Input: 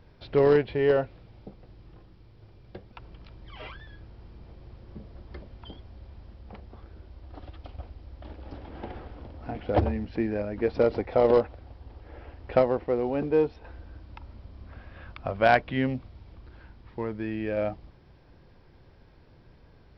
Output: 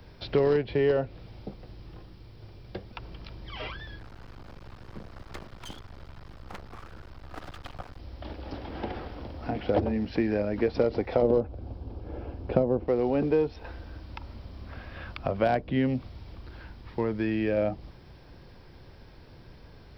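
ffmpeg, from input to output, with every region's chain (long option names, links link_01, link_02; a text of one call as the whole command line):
ffmpeg -i in.wav -filter_complex "[0:a]asettb=1/sr,asplit=3[link_01][link_02][link_03];[link_01]atrim=end=3.994[link_04];[link_02]atrim=start=3.99:end=7.99,asetpts=PTS-STARTPTS,afade=type=in:duration=0.004:curve=qsin,afade=type=out:start_time=3.996:duration=0.004:curve=qsin,equalizer=frequency=1300:width_type=o:width=1.2:gain=10.5,aeval=exprs='max(val(0),0)':channel_layout=same[link_05];[link_03]atrim=start=7.986[link_06];[link_04][link_05]acrossfade=duration=0.004:curve1=hsin:curve2=qsin[link_07];[link_07][link_06]acrossfade=duration=0.004:curve1=qsin:curve2=hsin,asettb=1/sr,asplit=3[link_08][link_09][link_10];[link_08]atrim=end=11.224[link_11];[link_09]atrim=start=11.22:end=12.88,asetpts=PTS-STARTPTS,afade=type=in:duration=0.004:curve=qsin,afade=type=out:start_time=1.656:duration=0.004:curve=qsin,tiltshelf=frequency=700:gain=9,bandreject=frequency=1900:width=5.8[link_12];[link_10]atrim=start=12.876[link_13];[link_11][link_12]acrossfade=duration=0.004:curve1=hsin:curve2=qsin[link_14];[link_14][link_13]acrossfade=duration=0.004:curve1=qsin:curve2=hsin,highshelf=frequency=4800:gain=10.5,acrossover=split=120|630[link_15][link_16][link_17];[link_15]acompressor=threshold=-45dB:ratio=4[link_18];[link_16]acompressor=threshold=-28dB:ratio=4[link_19];[link_17]acompressor=threshold=-41dB:ratio=4[link_20];[link_18][link_19][link_20]amix=inputs=3:normalize=0,volume=5dB" out.wav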